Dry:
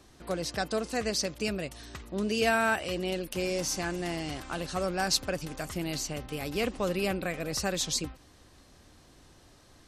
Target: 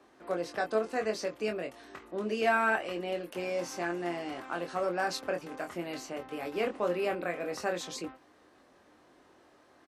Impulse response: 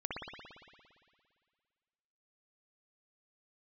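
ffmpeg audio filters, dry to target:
-filter_complex "[0:a]highpass=50,acrossover=split=250 2300:gain=0.1 1 0.2[a][b][c];[a][b][c]amix=inputs=3:normalize=0,asplit=2[d][e];[e]adelay=23,volume=-5dB[f];[d][f]amix=inputs=2:normalize=0"

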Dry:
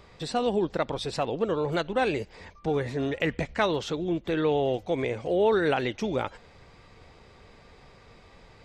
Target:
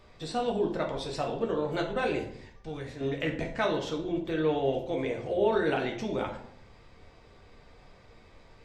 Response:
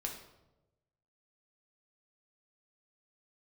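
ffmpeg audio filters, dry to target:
-filter_complex "[0:a]asettb=1/sr,asplit=3[a][b][c];[a]atrim=end=2.314[d];[b]atrim=start=2.31:end=3.01,asetpts=PTS-STARTPTS,afade=t=in:d=0.004:c=qsin,afade=t=out:st=0.696:d=0.004:c=qsin,equalizer=f=450:w=0.3:g=-9[e];[c]atrim=start=3.006[f];[d][e]acrossfade=d=0.004:c1=hsin:c2=qsin[g];[g][f]acrossfade=d=0.004:c1=qsin:c2=hsin[h];[1:a]atrim=start_sample=2205,asetrate=66150,aresample=44100[i];[h][i]afir=irnorm=-1:irlink=0"

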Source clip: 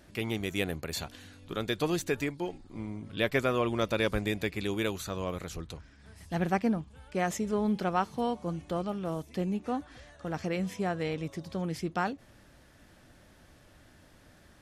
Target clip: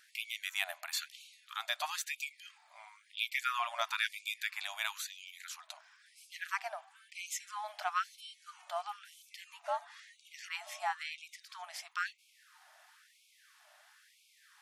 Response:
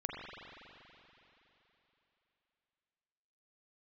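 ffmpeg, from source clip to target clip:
-filter_complex "[0:a]asettb=1/sr,asplit=3[a][b][c];[a]atrim=end=9.374[d];[b]atrim=start=9.37:end=11.32,asetpts=PTS-STARTPTS,afade=t=in:d=0.004:c=qsin,afade=t=out:st=1.946:d=0.004:c=qsin,afreqshift=110[e];[c]atrim=start=11.316[f];[d][e]acrossfade=d=0.004:c1=hsin:c2=qsin[g];[g][f]acrossfade=d=0.004:c1=qsin:c2=hsin,aeval=exprs='val(0)+0.000501*(sin(2*PI*50*n/s)+sin(2*PI*2*50*n/s)/2+sin(2*PI*3*50*n/s)/3+sin(2*PI*4*50*n/s)/4+sin(2*PI*5*50*n/s)/5)':c=same,asplit=2[h][i];[1:a]atrim=start_sample=2205,highshelf=f=2.2k:g=-8.5[j];[i][j]afir=irnorm=-1:irlink=0,volume=-22dB[k];[h][k]amix=inputs=2:normalize=0,afftfilt=real='re*gte(b*sr/1024,560*pow(2200/560,0.5+0.5*sin(2*PI*1*pts/sr)))':imag='im*gte(b*sr/1024,560*pow(2200/560,0.5+0.5*sin(2*PI*1*pts/sr)))':win_size=1024:overlap=0.75"

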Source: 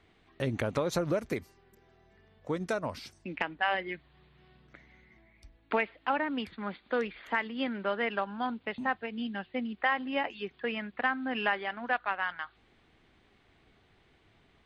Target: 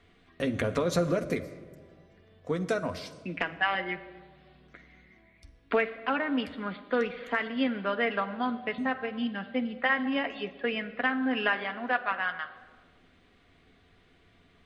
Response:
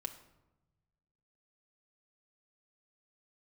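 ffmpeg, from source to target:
-filter_complex "[0:a]asplit=2[a][b];[b]asuperstop=centerf=880:order=4:qfactor=6.7[c];[1:a]atrim=start_sample=2205,asetrate=22932,aresample=44100[d];[c][d]afir=irnorm=-1:irlink=0,volume=1.5dB[e];[a][e]amix=inputs=2:normalize=0,volume=-5dB"

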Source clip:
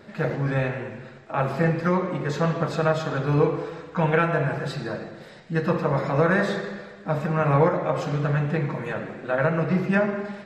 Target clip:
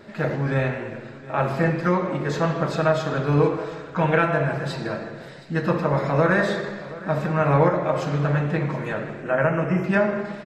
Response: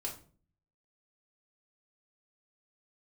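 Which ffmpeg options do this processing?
-filter_complex "[0:a]asettb=1/sr,asplit=3[a][b][c];[a]atrim=end=9.224[d];[b]atrim=start=9.22:end=9.84,asetpts=PTS-STARTPTS,afade=t=in:d=0.004:c=qsin,afade=t=out:st=0.616:d=0.004:c=qsin,asuperstop=centerf=4100:order=20:qfactor=2.1[e];[c]atrim=start=9.836[f];[d][e]acrossfade=d=0.004:c1=hsin:c2=qsin[g];[g][f]acrossfade=d=0.004:c1=qsin:c2=hsin,aecho=1:1:721:0.126,asplit=2[h][i];[1:a]atrim=start_sample=2205[j];[i][j]afir=irnorm=-1:irlink=0,volume=-9dB[k];[h][k]amix=inputs=2:normalize=0"

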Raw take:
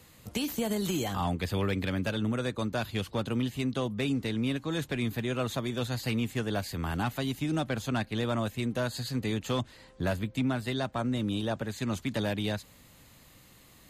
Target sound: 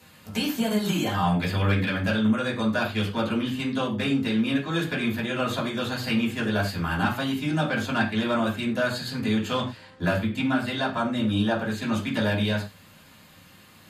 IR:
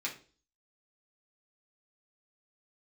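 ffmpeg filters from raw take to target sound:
-filter_complex "[1:a]atrim=start_sample=2205,afade=t=out:st=0.13:d=0.01,atrim=end_sample=6174,asetrate=29547,aresample=44100[a];[0:a][a]afir=irnorm=-1:irlink=0,volume=1.5dB"

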